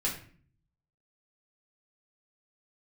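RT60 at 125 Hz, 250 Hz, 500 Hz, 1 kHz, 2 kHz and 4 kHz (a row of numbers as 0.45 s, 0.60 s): 0.95 s, 0.75 s, 0.50 s, 0.45 s, 0.45 s, 0.35 s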